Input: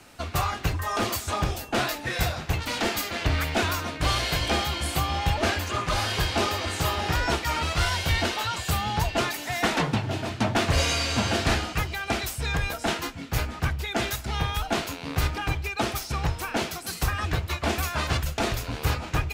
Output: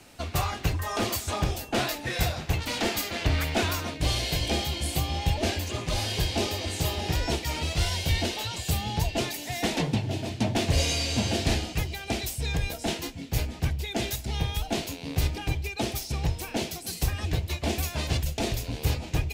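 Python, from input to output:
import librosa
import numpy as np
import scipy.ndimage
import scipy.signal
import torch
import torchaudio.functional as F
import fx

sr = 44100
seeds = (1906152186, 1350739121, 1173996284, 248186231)

y = fx.peak_eq(x, sr, hz=1300.0, db=fx.steps((0.0, -5.5), (3.94, -15.0)), octaves=1.0)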